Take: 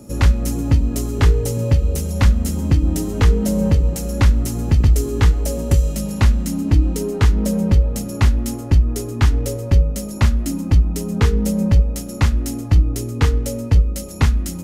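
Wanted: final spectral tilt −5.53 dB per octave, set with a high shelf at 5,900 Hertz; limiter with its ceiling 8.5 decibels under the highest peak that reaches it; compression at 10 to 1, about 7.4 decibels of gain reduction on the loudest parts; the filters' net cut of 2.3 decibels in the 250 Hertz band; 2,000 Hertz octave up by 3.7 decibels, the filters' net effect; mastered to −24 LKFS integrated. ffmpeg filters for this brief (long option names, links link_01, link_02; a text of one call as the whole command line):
ffmpeg -i in.wav -af "equalizer=frequency=250:width_type=o:gain=-3,equalizer=frequency=2000:width_type=o:gain=4,highshelf=frequency=5900:gain=5,acompressor=threshold=-16dB:ratio=10,volume=1.5dB,alimiter=limit=-14.5dB:level=0:latency=1" out.wav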